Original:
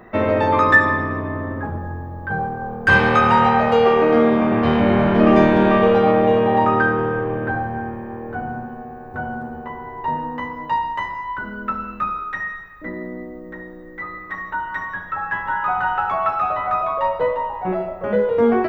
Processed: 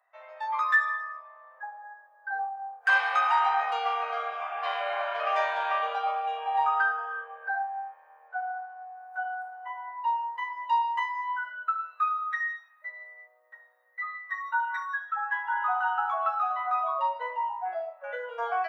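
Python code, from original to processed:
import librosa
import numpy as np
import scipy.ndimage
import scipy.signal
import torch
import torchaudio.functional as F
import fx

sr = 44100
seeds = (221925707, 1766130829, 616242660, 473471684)

y = fx.low_shelf(x, sr, hz=360.0, db=9.5, at=(1.54, 2.98))
y = fx.lowpass(y, sr, hz=5600.0, slope=12, at=(8.28, 8.96))
y = fx.comb(y, sr, ms=3.5, depth=0.6, at=(14.4, 14.98))
y = fx.noise_reduce_blind(y, sr, reduce_db=14)
y = scipy.signal.sosfilt(scipy.signal.butter(8, 620.0, 'highpass', fs=sr, output='sos'), y)
y = fx.rider(y, sr, range_db=4, speed_s=2.0)
y = y * 10.0 ** (-7.0 / 20.0)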